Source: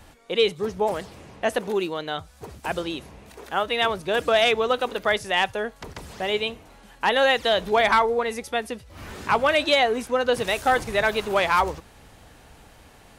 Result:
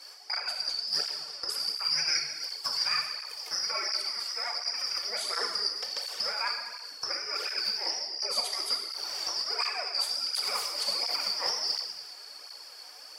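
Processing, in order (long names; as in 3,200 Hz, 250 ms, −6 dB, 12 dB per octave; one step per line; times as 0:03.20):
band-splitting scrambler in four parts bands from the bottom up 2341
high-pass filter 440 Hz 24 dB per octave
brickwall limiter −16 dBFS, peak gain reduction 8.5 dB
compressor whose output falls as the input rises −29 dBFS, ratio −0.5
harmonic generator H 2 −21 dB, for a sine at −13.5 dBFS
reverb whose tail is shaped and stops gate 430 ms falling, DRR 1 dB
through-zero flanger with one copy inverted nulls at 1.4 Hz, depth 4.9 ms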